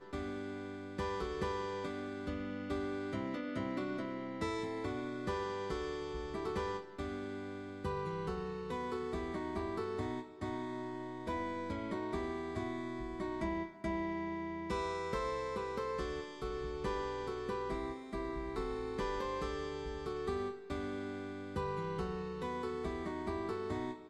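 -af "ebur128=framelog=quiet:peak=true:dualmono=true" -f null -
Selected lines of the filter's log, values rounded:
Integrated loudness:
  I:         -36.7 LUFS
  Threshold: -46.7 LUFS
Loudness range:
  LRA:         1.4 LU
  Threshold: -56.7 LUFS
  LRA low:   -37.3 LUFS
  LRA high:  -35.9 LUFS
True peak:
  Peak:      -23.7 dBFS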